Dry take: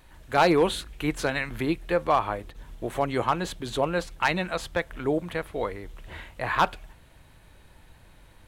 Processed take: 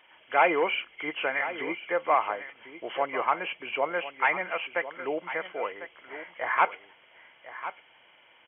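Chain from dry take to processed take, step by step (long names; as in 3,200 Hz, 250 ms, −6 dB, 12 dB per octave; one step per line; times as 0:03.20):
hearing-aid frequency compression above 2,000 Hz 4 to 1
high-pass filter 540 Hz 12 dB per octave
single-tap delay 1,049 ms −13 dB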